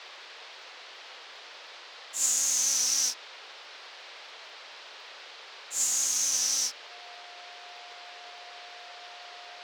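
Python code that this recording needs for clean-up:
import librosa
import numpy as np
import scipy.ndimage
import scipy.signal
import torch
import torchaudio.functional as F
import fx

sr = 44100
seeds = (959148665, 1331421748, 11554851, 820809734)

y = fx.fix_declick_ar(x, sr, threshold=6.5)
y = fx.notch(y, sr, hz=710.0, q=30.0)
y = fx.noise_reduce(y, sr, print_start_s=0.48, print_end_s=0.98, reduce_db=29.0)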